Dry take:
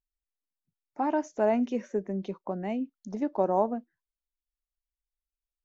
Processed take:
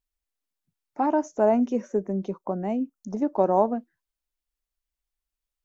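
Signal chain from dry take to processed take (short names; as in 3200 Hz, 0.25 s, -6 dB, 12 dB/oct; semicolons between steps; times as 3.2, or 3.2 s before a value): 1.06–3.37 band shelf 2800 Hz -8 dB; gain +4.5 dB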